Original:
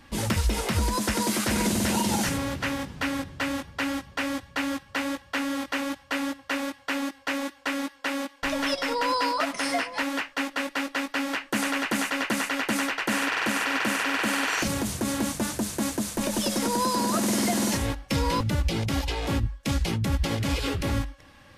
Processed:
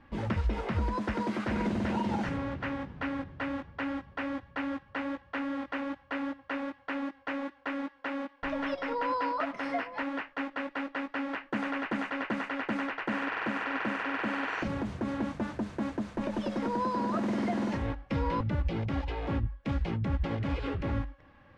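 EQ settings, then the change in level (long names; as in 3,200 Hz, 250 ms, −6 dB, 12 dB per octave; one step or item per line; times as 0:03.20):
low-pass filter 1,900 Hz 12 dB per octave
−4.5 dB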